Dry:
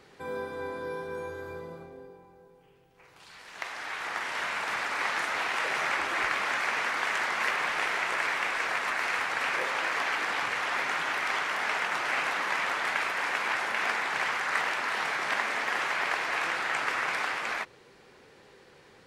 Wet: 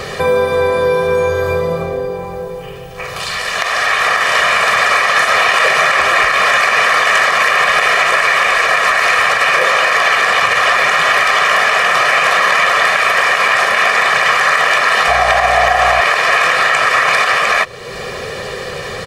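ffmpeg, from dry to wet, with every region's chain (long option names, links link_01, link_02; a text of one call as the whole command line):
ffmpeg -i in.wav -filter_complex "[0:a]asettb=1/sr,asplit=3[link_01][link_02][link_03];[link_01]atrim=end=15.084[link_04];[link_02]atrim=start=15.08:end=16.01,asetpts=PTS-STARTPTS,afade=type=in:duration=0.004:curve=qsin,afade=type=out:start_time=0.926:duration=0.004:curve=qsin,highpass=310,equalizer=frequency=730:width_type=o:width=0.41:gain=15,aeval=exprs='val(0)+0.00562*(sin(2*PI*60*n/s)+sin(2*PI*2*60*n/s)/2+sin(2*PI*3*60*n/s)/3+sin(2*PI*4*60*n/s)/4+sin(2*PI*5*60*n/s)/5)':channel_layout=same[link_05];[link_03]atrim=start=16.006[link_06];[link_04][link_05]acrossfade=duration=0.004:curve1=hsin:curve2=qsin[link_07];[link_07][link_06]acrossfade=duration=0.004:curve1=qsin:curve2=hsin,aecho=1:1:1.7:0.75,acompressor=threshold=-50dB:ratio=2,alimiter=level_in=31.5dB:limit=-1dB:release=50:level=0:latency=1,volume=-1dB" out.wav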